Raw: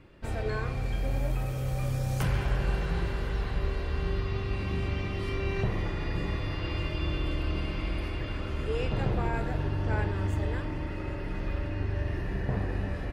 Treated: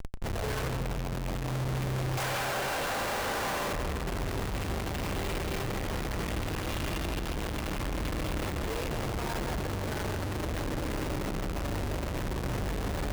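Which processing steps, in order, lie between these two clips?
2.17–3.73 steep high-pass 530 Hz 36 dB/oct; Schmitt trigger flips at -44.5 dBFS; on a send: darkening echo 0.17 s, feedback 59%, low-pass 2600 Hz, level -8 dB; on the sum: gain -2 dB

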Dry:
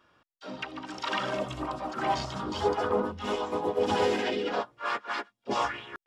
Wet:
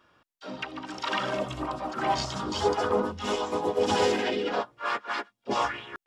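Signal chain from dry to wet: 2.18–4.12 bell 6700 Hz +7 dB 1.5 oct; gain +1.5 dB

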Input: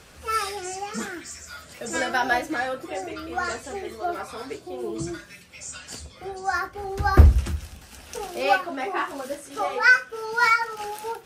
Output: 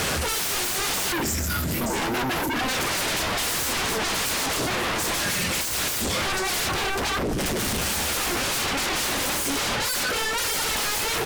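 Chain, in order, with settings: reverse; compressor 12:1, threshold -32 dBFS, peak gain reduction 26 dB; reverse; spectral gain 1.12–2.69, 390–11000 Hz -15 dB; power-law curve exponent 0.7; HPF 68 Hz 12 dB/oct; sine folder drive 19 dB, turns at -22.5 dBFS; on a send: echo 1.063 s -20.5 dB

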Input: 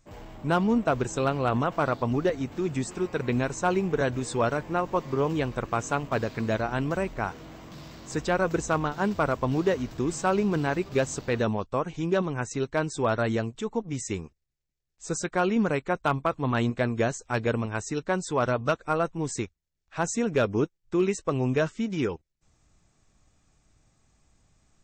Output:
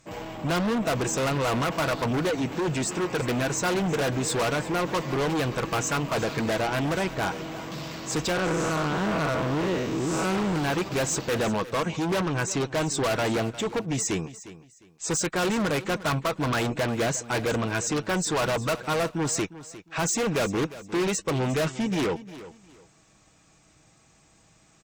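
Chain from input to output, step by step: 8.32–10.56 time blur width 0.199 s; HPF 180 Hz 6 dB/oct; bell 2600 Hz +2.5 dB 0.43 oct; comb 6.2 ms, depth 31%; overloaded stage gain 20.5 dB; added harmonics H 5 -8 dB, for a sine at -20 dBFS; feedback echo 0.355 s, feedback 25%, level -16 dB

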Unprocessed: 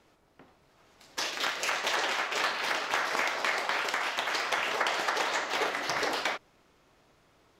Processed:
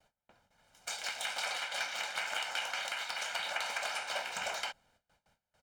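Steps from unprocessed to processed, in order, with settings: gate with hold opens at -53 dBFS; comb 1.8 ms, depth 65%; speed mistake 33 rpm record played at 45 rpm; gain -8.5 dB

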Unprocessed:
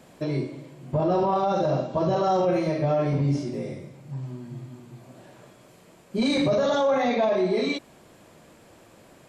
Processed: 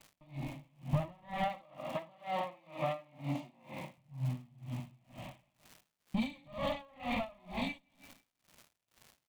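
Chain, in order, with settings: minimum comb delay 0.37 ms; 1.48–3.98 HPF 290 Hz 12 dB/oct; gate with hold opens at -40 dBFS; Chebyshev low-pass 4600 Hz, order 2; bell 440 Hz -10 dB 0.24 oct; compressor 5:1, threshold -36 dBFS, peak gain reduction 13 dB; fixed phaser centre 1500 Hz, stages 6; crackle 290/s -51 dBFS; feedback echo 0.166 s, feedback 42%, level -15 dB; dB-linear tremolo 2.1 Hz, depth 29 dB; gain +9 dB

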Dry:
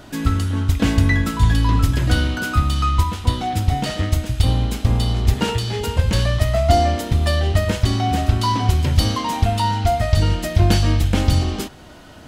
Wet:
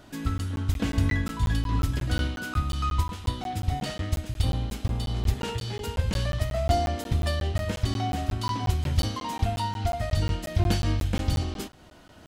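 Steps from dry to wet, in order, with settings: crackling interface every 0.18 s, samples 512, zero, from 0.38; noise-modulated level, depth 50%; gain -7 dB

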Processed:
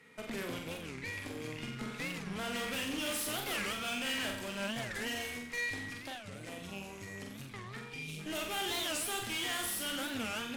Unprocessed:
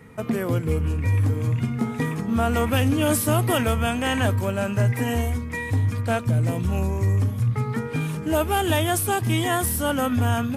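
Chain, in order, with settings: weighting filter D; 7.89–8.19 spectral delete 500–2200 Hz; low shelf 100 Hz -11.5 dB; 5.89–8.08 compressor, threshold -29 dBFS, peak gain reduction 11.5 dB; tube stage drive 26 dB, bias 0.8; flutter echo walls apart 7.8 m, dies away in 0.61 s; record warp 45 rpm, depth 250 cents; gain -9 dB

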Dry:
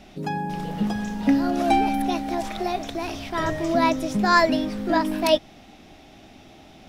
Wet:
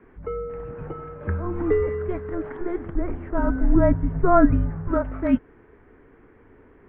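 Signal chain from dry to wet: mistuned SSB -360 Hz 330–2100 Hz; 2.86–4.88 tilt -2.5 dB/oct

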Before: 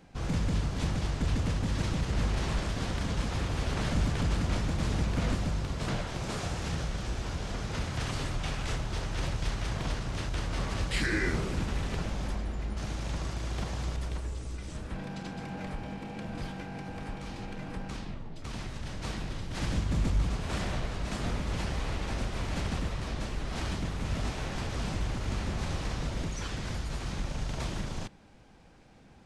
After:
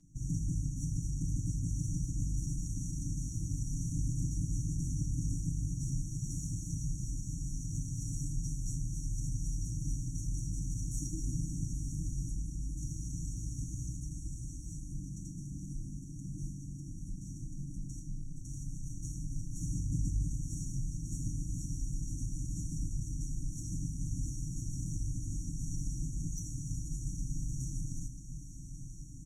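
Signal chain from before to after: minimum comb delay 0.89 ms; passive tone stack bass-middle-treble 5-5-5; in parallel at -1 dB: limiter -37.5 dBFS, peak gain reduction 8 dB; on the sum: brick-wall FIR band-stop 360–5600 Hz; air absorption 59 m; comb 7 ms, depth 98%; diffused feedback echo 0.984 s, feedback 74%, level -11 dB; gain +5 dB

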